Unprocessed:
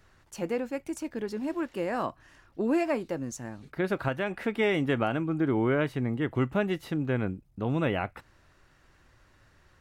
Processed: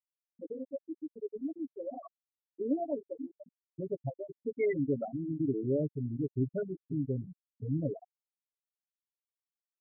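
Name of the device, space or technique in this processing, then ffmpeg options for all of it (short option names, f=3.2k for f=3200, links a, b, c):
ducked delay: -filter_complex "[0:a]asplit=3[a][b][c];[b]adelay=497,volume=-8dB[d];[c]apad=whole_len=454177[e];[d][e]sidechaincompress=threshold=-29dB:ratio=5:attack=25:release=728[f];[a][f]amix=inputs=2:normalize=0,afftfilt=real='re*gte(hypot(re,im),0.224)':imag='im*gte(hypot(re,im),0.224)':win_size=1024:overlap=0.75,aecho=1:1:7.1:0.84,volume=-6.5dB"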